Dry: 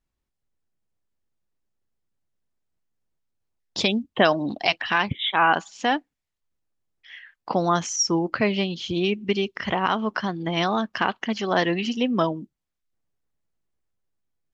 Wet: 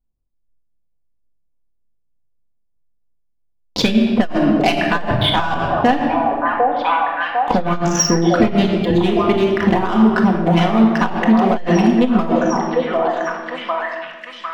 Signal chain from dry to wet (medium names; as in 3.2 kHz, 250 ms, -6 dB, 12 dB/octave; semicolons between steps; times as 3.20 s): local Wiener filter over 25 samples; waveshaping leveller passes 3; treble shelf 3.7 kHz -7.5 dB; repeats whose band climbs or falls 751 ms, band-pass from 570 Hz, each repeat 0.7 oct, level -3 dB; reverb removal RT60 1.1 s; in parallel at +3 dB: peak limiter -12 dBFS, peak gain reduction 9.5 dB; on the sum: bass shelf 66 Hz +7.5 dB; reverberation RT60 1.5 s, pre-delay 4 ms, DRR -0.5 dB; compression 1.5:1, threshold -10 dBFS, peak gain reduction 4.5 dB; transformer saturation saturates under 100 Hz; trim -4.5 dB